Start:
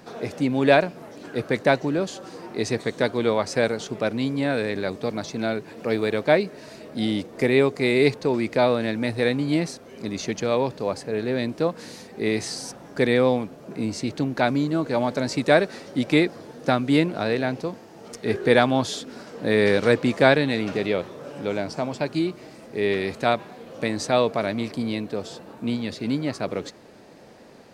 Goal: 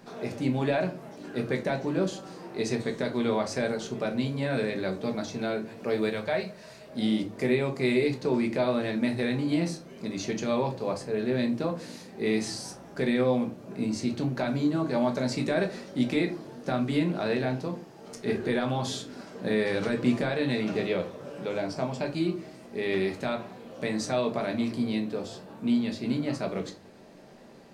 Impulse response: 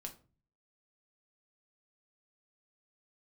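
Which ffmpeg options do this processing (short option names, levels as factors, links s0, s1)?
-filter_complex "[0:a]asettb=1/sr,asplit=3[s0][s1][s2];[s0]atrim=end=6.094[s3];[s1]atrim=start=6.09:end=6.88,asetpts=PTS-STARTPTS,afade=t=in:d=0.004:c=qsin,afade=t=out:st=0.786:d=0.004:c=qsin,equalizer=f=290:w=1.5:g=-14[s4];[s2]atrim=start=6.876[s5];[s3][s4]acrossfade=d=0.004:c1=hsin:c2=qsin[s6];[s6][s5]acrossfade=d=0.004:c1=qsin:c2=hsin,alimiter=limit=0.237:level=0:latency=1:release=58[s7];[1:a]atrim=start_sample=2205[s8];[s7][s8]afir=irnorm=-1:irlink=0"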